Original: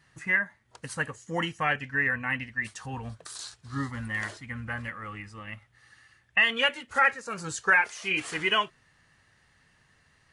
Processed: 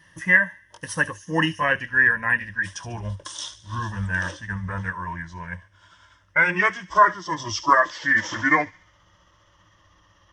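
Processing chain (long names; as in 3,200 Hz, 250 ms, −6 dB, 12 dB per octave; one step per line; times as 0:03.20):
pitch glide at a constant tempo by −7 semitones starting unshifted
EQ curve with evenly spaced ripples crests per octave 1.2, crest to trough 12 dB
delay with a high-pass on its return 72 ms, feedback 48%, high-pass 3,400 Hz, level −13 dB
level +5.5 dB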